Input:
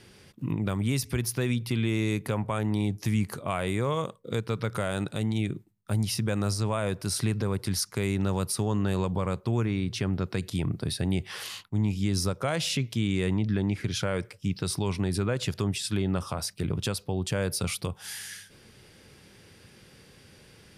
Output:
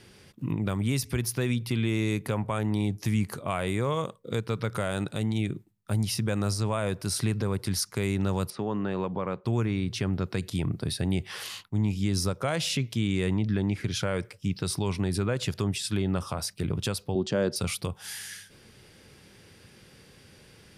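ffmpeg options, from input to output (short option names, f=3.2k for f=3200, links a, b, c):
-filter_complex "[0:a]asettb=1/sr,asplit=3[a][b][c];[a]atrim=end=8.504[d];[b]atrim=start=8.5:end=9.45,asetpts=PTS-STARTPTS,afade=t=in:d=0.004:c=qsin,afade=t=out:st=0.946:d=0.004:c=qsin,highpass=180,lowpass=2.6k[e];[c]atrim=start=9.446[f];[d][e]acrossfade=d=0.004:c1=hsin:c2=qsin[g];[g][f]acrossfade=d=0.004:c1=qsin:c2=hsin,asettb=1/sr,asplit=3[h][i][j];[h]atrim=end=17.154[k];[i]atrim=start=17.15:end=17.56,asetpts=PTS-STARTPTS,afade=t=in:d=0.004:c=qsin,afade=t=out:st=0.406:d=0.004:c=qsin,highpass=150,equalizer=f=220:t=q:w=4:g=9,equalizer=f=360:t=q:w=4:g=8,equalizer=f=580:t=q:w=4:g=5,equalizer=f=2.3k:t=q:w=4:g=-7,lowpass=f=6.3k:w=0.5412,lowpass=f=6.3k:w=1.3066[l];[j]atrim=start=17.556[m];[k][l]acrossfade=d=0.004:c1=hsin:c2=qsin[n];[n][m]acrossfade=d=0.004:c1=qsin:c2=hsin"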